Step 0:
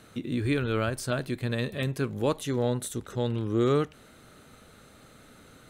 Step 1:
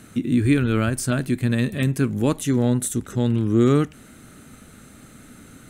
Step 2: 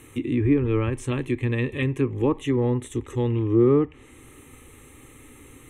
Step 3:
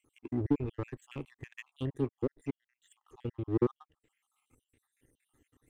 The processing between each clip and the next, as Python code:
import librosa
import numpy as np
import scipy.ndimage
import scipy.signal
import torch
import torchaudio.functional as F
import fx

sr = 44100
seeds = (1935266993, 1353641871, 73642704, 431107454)

y1 = fx.graphic_eq(x, sr, hz=(250, 500, 1000, 4000, 8000), db=(5, -7, -5, -7, 4))
y1 = y1 * 10.0 ** (8.0 / 20.0)
y2 = fx.fixed_phaser(y1, sr, hz=980.0, stages=8)
y2 = fx.env_lowpass_down(y2, sr, base_hz=1200.0, full_db=-19.0)
y2 = y2 * 10.0 ** (2.5 / 20.0)
y3 = fx.spec_dropout(y2, sr, seeds[0], share_pct=64)
y3 = fx.power_curve(y3, sr, exponent=1.4)
y3 = y3 * 10.0 ** (-5.5 / 20.0)